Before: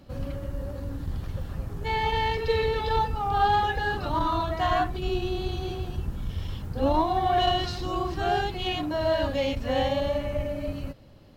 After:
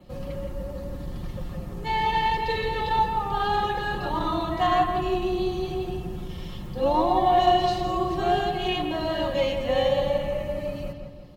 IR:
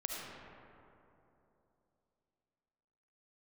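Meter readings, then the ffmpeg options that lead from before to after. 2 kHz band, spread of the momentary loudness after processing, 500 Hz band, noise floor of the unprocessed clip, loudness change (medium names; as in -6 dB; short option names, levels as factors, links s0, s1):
+0.5 dB, 14 LU, +2.5 dB, -40 dBFS, +2.0 dB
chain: -filter_complex "[0:a]bandreject=f=1500:w=5.5,aecho=1:1:5.6:0.54,adynamicequalizer=threshold=0.00112:dfrequency=5200:dqfactor=4.5:tfrequency=5200:tqfactor=4.5:attack=5:release=100:ratio=0.375:range=3:mode=cutabove:tftype=bell,acrossover=split=140[s0][s1];[s0]asoftclip=type=tanh:threshold=0.0237[s2];[s2][s1]amix=inputs=2:normalize=0,asplit=2[s3][s4];[s4]adelay=168,lowpass=f=2400:p=1,volume=0.531,asplit=2[s5][s6];[s6]adelay=168,lowpass=f=2400:p=1,volume=0.51,asplit=2[s7][s8];[s8]adelay=168,lowpass=f=2400:p=1,volume=0.51,asplit=2[s9][s10];[s10]adelay=168,lowpass=f=2400:p=1,volume=0.51,asplit=2[s11][s12];[s12]adelay=168,lowpass=f=2400:p=1,volume=0.51,asplit=2[s13][s14];[s14]adelay=168,lowpass=f=2400:p=1,volume=0.51[s15];[s3][s5][s7][s9][s11][s13][s15]amix=inputs=7:normalize=0"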